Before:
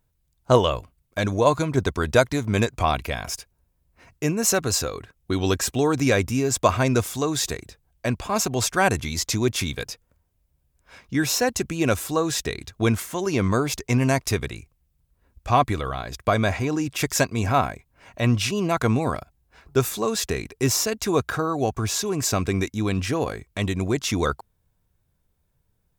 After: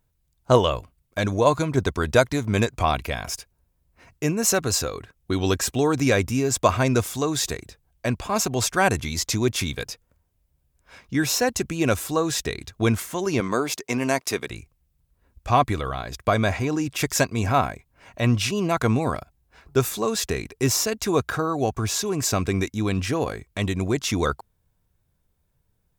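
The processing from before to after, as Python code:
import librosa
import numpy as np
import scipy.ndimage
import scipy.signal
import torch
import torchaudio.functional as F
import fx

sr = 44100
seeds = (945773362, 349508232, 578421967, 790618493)

y = fx.highpass(x, sr, hz=250.0, slope=12, at=(13.4, 14.5))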